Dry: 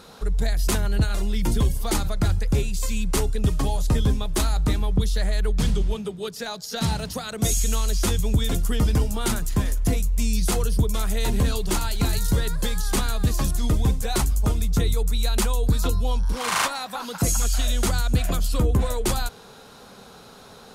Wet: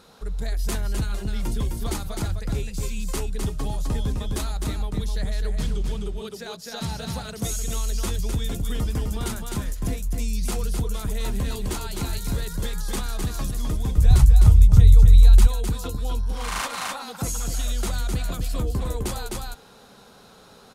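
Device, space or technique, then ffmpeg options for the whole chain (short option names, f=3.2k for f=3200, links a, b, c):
ducked delay: -filter_complex "[0:a]asplit=3[a][b][c];[b]adelay=257,volume=-2dB[d];[c]apad=whole_len=926241[e];[d][e]sidechaincompress=threshold=-21dB:ratio=8:attack=5.1:release=184[f];[a][f]amix=inputs=2:normalize=0,asettb=1/sr,asplit=3[g][h][i];[g]atrim=end=13.984[j];[h]atrim=start=13.98:end=15.47,asetpts=PTS-STARTPTS,afade=t=in:d=0.004:c=qsin,afade=t=out:st=1.486:d=0.004:c=qsin,lowshelf=f=170:t=q:w=1.5:g=14[k];[i]atrim=start=15.466[l];[j][k]acrossfade=d=0.004:c1=hsin:c2=qsin[m];[m][l]acrossfade=d=0.004:c1=qsin:c2=hsin,volume=-6dB"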